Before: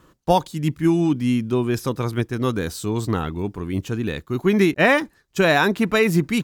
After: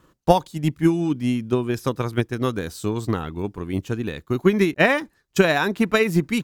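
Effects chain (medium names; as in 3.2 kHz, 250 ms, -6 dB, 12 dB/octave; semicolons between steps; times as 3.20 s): transient shaper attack +8 dB, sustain -1 dB; trim -4 dB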